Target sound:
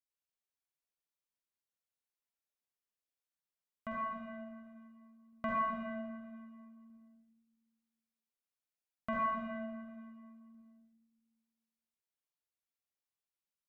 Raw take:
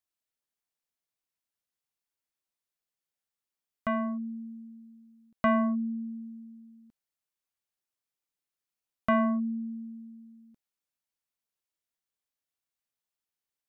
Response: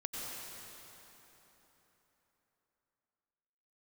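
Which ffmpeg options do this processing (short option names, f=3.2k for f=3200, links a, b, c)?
-filter_complex "[1:a]atrim=start_sample=2205,asetrate=88200,aresample=44100[a];[0:a][a]afir=irnorm=-1:irlink=0,volume=-2.5dB"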